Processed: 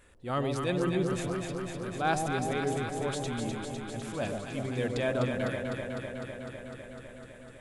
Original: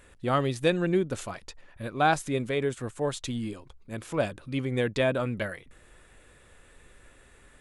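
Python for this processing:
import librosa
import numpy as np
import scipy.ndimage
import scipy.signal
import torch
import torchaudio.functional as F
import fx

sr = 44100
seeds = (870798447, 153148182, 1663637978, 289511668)

p1 = fx.transient(x, sr, attack_db=-7, sustain_db=2)
p2 = p1 + fx.echo_alternate(p1, sr, ms=126, hz=830.0, feedback_pct=88, wet_db=-3.5, dry=0)
y = F.gain(torch.from_numpy(p2), -4.0).numpy()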